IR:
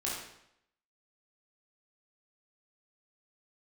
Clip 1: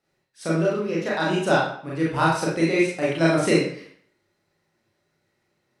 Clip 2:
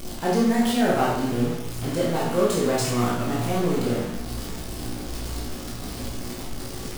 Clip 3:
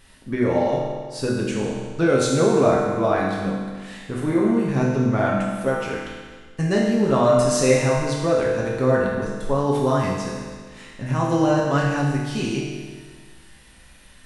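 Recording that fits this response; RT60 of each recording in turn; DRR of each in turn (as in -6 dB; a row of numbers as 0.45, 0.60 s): 2; 0.55, 0.75, 1.6 s; -6.0, -6.0, -4.5 dB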